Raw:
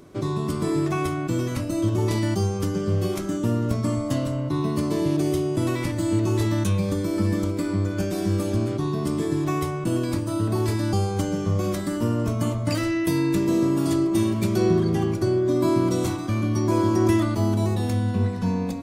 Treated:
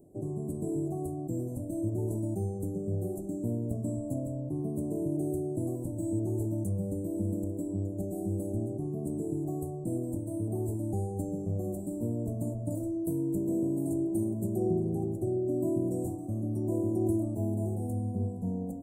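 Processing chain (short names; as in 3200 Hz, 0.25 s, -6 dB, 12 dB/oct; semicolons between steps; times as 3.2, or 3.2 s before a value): Chebyshev band-stop 740–7800 Hz, order 4; gain -8.5 dB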